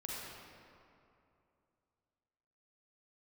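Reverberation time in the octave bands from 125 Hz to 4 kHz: 3.0 s, 2.8 s, 2.8 s, 2.6 s, 2.1 s, 1.5 s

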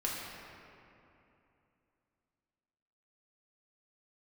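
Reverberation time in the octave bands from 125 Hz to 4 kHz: 3.2 s, 3.3 s, 2.9 s, 2.8 s, 2.5 s, 1.6 s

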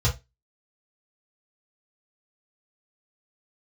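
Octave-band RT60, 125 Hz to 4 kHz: 0.20 s, 0.20 s, 0.20 s, 0.20 s, 0.20 s, 0.20 s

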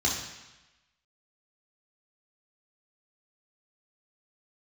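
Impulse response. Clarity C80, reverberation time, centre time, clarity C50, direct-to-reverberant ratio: 6.5 dB, 1.0 s, 45 ms, 4.0 dB, -4.0 dB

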